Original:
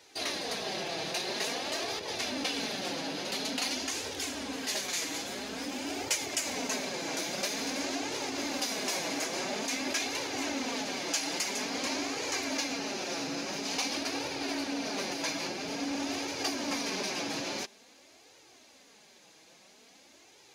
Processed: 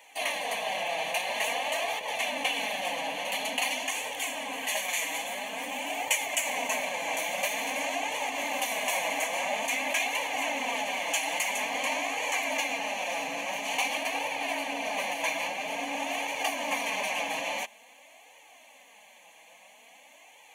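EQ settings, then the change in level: HPF 380 Hz 12 dB/oct; fixed phaser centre 1400 Hz, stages 6; notch 3800 Hz, Q 5.5; +8.5 dB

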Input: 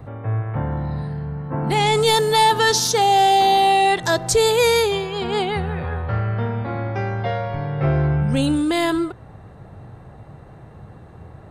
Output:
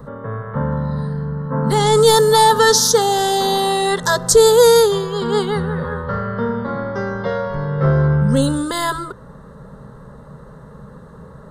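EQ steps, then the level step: fixed phaser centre 490 Hz, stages 8; +7.5 dB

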